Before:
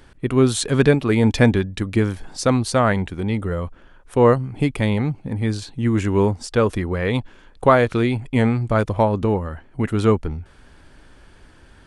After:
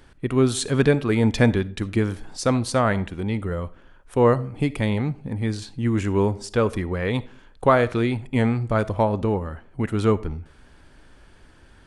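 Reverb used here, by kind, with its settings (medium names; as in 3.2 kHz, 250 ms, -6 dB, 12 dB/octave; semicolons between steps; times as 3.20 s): algorithmic reverb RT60 0.46 s, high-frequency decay 0.5×, pre-delay 15 ms, DRR 17.5 dB; trim -3 dB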